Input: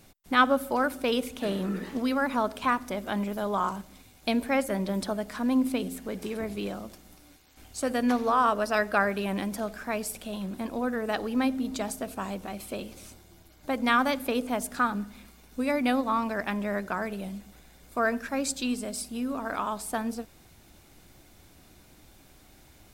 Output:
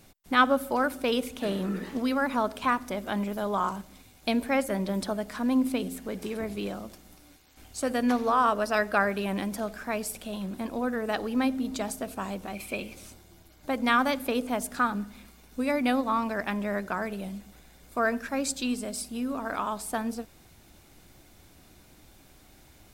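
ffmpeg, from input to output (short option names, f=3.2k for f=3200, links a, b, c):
-filter_complex "[0:a]asettb=1/sr,asplit=3[a][b][c];[a]atrim=end=12.554[d];[b]atrim=start=12.55:end=12.96,asetpts=PTS-STARTPTS,afade=t=in:d=0.004:c=qsin,afade=t=out:st=0.406:d=0.004:c=qsin,equalizer=f=2.4k:w=6.1:g=14.5[e];[c]atrim=start=12.956[f];[d][e]acrossfade=d=0.004:c1=hsin:c2=qsin[g];[g][f]acrossfade=d=0.004:c1=qsin:c2=hsin"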